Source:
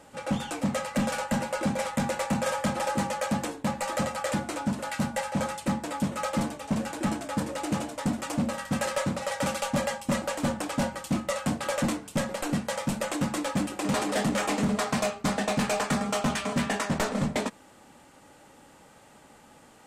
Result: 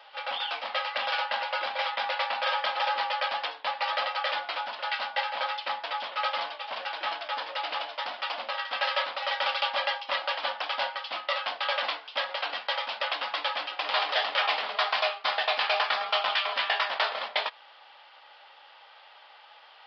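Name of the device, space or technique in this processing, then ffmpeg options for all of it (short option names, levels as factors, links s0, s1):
musical greeting card: -af "aresample=11025,aresample=44100,highpass=f=700:w=0.5412,highpass=f=700:w=1.3066,equalizer=f=3200:t=o:w=0.56:g=8,volume=1.5"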